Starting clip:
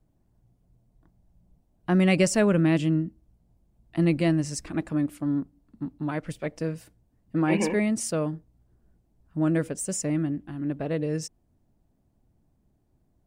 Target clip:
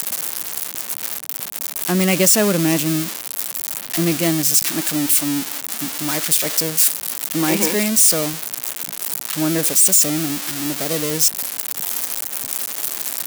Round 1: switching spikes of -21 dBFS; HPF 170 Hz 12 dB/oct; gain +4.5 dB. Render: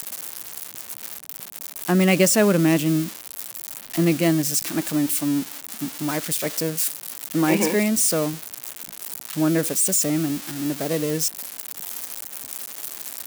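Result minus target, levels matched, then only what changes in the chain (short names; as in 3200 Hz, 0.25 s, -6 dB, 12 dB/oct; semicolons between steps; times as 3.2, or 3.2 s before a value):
switching spikes: distortion -9 dB
change: switching spikes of -12 dBFS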